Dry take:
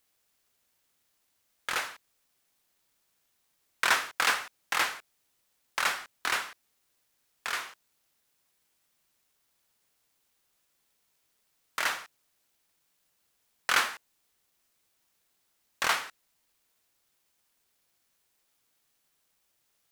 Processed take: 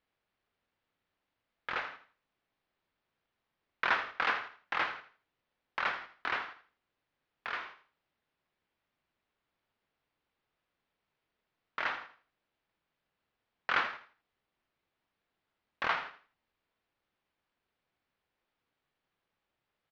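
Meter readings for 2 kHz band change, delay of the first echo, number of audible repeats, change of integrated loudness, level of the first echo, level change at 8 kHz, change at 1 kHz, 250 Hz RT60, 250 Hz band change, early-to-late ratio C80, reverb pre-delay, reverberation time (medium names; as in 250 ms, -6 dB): -4.0 dB, 81 ms, 3, -5.0 dB, -12.5 dB, under -25 dB, -3.0 dB, no reverb, -2.0 dB, no reverb, no reverb, no reverb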